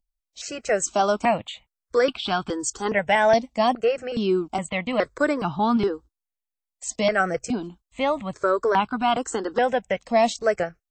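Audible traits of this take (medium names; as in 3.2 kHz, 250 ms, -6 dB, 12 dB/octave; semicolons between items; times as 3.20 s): notches that jump at a steady rate 2.4 Hz 400–1900 Hz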